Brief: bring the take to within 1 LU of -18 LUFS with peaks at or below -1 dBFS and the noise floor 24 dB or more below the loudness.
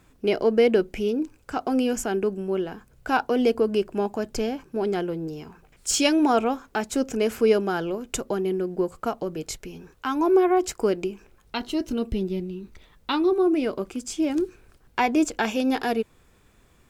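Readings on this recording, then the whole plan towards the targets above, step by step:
loudness -25.0 LUFS; peak level -8.5 dBFS; loudness target -18.0 LUFS
-> trim +7 dB

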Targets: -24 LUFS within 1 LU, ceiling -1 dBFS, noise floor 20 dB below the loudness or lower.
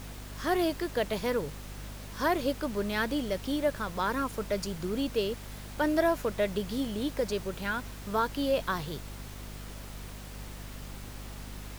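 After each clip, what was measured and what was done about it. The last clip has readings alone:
hum 50 Hz; highest harmonic 250 Hz; hum level -41 dBFS; noise floor -43 dBFS; noise floor target -51 dBFS; loudness -31.0 LUFS; peak level -14.0 dBFS; loudness target -24.0 LUFS
-> hum notches 50/100/150/200/250 Hz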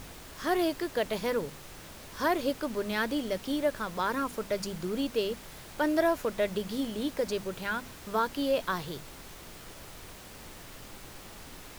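hum not found; noise floor -48 dBFS; noise floor target -52 dBFS
-> noise print and reduce 6 dB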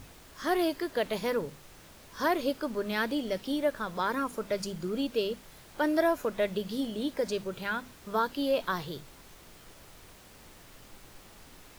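noise floor -54 dBFS; loudness -31.5 LUFS; peak level -14.5 dBFS; loudness target -24.0 LUFS
-> trim +7.5 dB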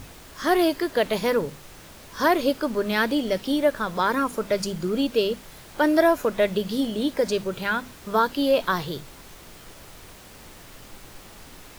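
loudness -24.0 LUFS; peak level -7.0 dBFS; noise floor -46 dBFS

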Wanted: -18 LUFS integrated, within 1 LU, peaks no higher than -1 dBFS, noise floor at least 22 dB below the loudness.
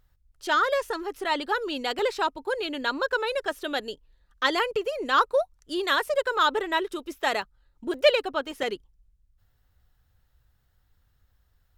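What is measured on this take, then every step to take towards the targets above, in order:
dropouts 4; longest dropout 1.3 ms; loudness -26.5 LUFS; peak level -7.0 dBFS; loudness target -18.0 LUFS
-> interpolate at 1.99/7.42/7.94/8.63 s, 1.3 ms; trim +8.5 dB; peak limiter -1 dBFS

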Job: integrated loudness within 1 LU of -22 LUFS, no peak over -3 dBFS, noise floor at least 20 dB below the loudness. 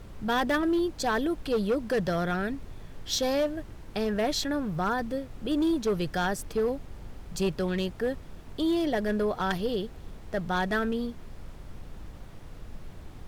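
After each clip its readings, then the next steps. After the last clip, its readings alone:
clipped samples 1.4%; clipping level -21.0 dBFS; noise floor -46 dBFS; noise floor target -49 dBFS; loudness -29.0 LUFS; peak level -21.0 dBFS; loudness target -22.0 LUFS
-> clip repair -21 dBFS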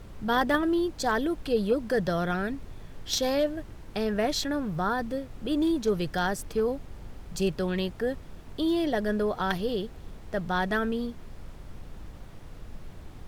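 clipped samples 0.0%; noise floor -46 dBFS; noise floor target -49 dBFS
-> noise print and reduce 6 dB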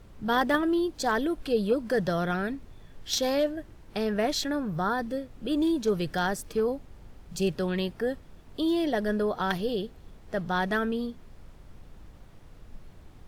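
noise floor -51 dBFS; loudness -28.5 LUFS; peak level -12.0 dBFS; loudness target -22.0 LUFS
-> trim +6.5 dB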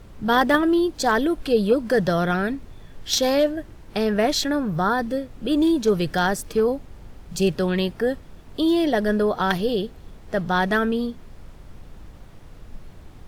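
loudness -22.0 LUFS; peak level -5.5 dBFS; noise floor -45 dBFS

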